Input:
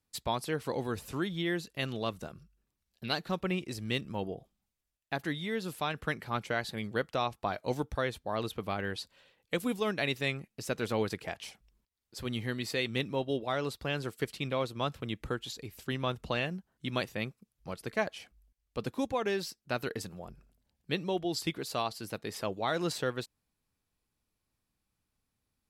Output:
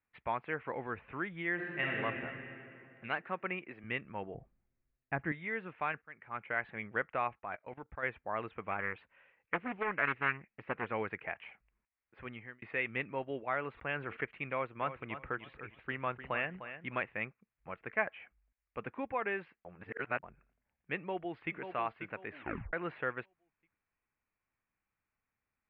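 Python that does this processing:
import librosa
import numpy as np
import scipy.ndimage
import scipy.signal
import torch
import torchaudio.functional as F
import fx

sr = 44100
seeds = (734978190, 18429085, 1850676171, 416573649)

y = fx.reverb_throw(x, sr, start_s=1.54, length_s=0.42, rt60_s=2.8, drr_db=-5.0)
y = fx.highpass(y, sr, hz=190.0, slope=12, at=(3.17, 3.84))
y = fx.riaa(y, sr, side='playback', at=(4.34, 5.32))
y = fx.level_steps(y, sr, step_db=19, at=(7.38, 8.02), fade=0.02)
y = fx.doppler_dist(y, sr, depth_ms=0.5, at=(8.71, 10.86))
y = fx.sustainer(y, sr, db_per_s=44.0, at=(13.71, 14.21))
y = fx.echo_feedback(y, sr, ms=303, feedback_pct=25, wet_db=-11.0, at=(14.78, 17.03), fade=0.02)
y = fx.echo_throw(y, sr, start_s=20.96, length_s=0.62, ms=540, feedback_pct=30, wet_db=-8.0)
y = fx.edit(y, sr, fx.fade_in_span(start_s=6.02, length_s=0.67),
    fx.fade_out_span(start_s=12.17, length_s=0.45),
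    fx.reverse_span(start_s=19.65, length_s=0.58),
    fx.tape_stop(start_s=22.29, length_s=0.44), tone=tone)
y = scipy.signal.sosfilt(scipy.signal.butter(8, 2400.0, 'lowpass', fs=sr, output='sos'), y)
y = fx.tilt_shelf(y, sr, db=-8.0, hz=790.0)
y = F.gain(torch.from_numpy(y), -2.5).numpy()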